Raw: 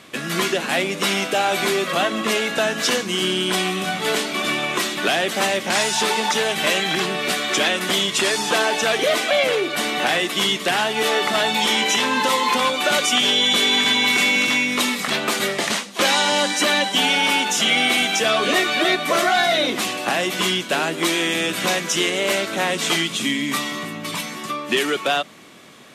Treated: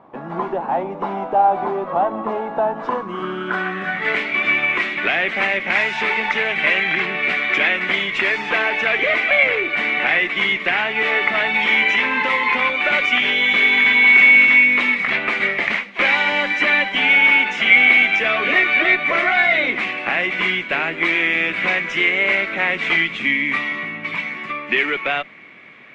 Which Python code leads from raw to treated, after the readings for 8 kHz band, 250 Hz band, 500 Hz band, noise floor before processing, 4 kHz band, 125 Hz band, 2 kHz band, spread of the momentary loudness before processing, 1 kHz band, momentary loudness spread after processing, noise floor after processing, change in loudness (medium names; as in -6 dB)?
under -20 dB, -3.5 dB, -2.5 dB, -32 dBFS, -6.0 dB, no reading, +7.0 dB, 6 LU, 0.0 dB, 12 LU, -32 dBFS, +3.0 dB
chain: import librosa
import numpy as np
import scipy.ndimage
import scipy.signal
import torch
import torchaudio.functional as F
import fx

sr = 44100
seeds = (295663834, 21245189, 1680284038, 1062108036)

y = scipy.signal.sosfilt(scipy.signal.butter(8, 10000.0, 'lowpass', fs=sr, output='sos'), x)
y = fx.cheby_harmonics(y, sr, harmonics=(6,), levels_db=(-28,), full_scale_db=-5.5)
y = fx.filter_sweep_lowpass(y, sr, from_hz=880.0, to_hz=2200.0, start_s=2.73, end_s=4.21, q=5.6)
y = y * librosa.db_to_amplitude(-4.0)